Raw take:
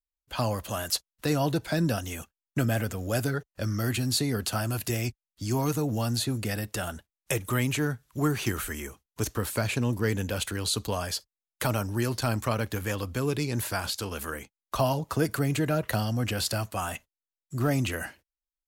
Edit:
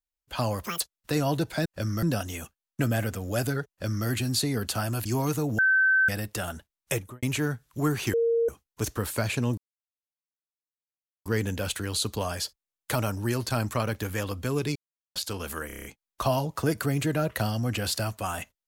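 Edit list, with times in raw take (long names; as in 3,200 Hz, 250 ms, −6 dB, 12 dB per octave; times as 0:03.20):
0:00.65–0:00.95: play speed 193%
0:03.47–0:03.84: duplicate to 0:01.80
0:04.83–0:05.45: remove
0:05.98–0:06.48: beep over 1,540 Hz −18 dBFS
0:07.32–0:07.62: fade out and dull
0:08.53–0:08.88: beep over 463 Hz −20.5 dBFS
0:09.97: splice in silence 1.68 s
0:13.47–0:13.87: silence
0:14.38: stutter 0.03 s, 7 plays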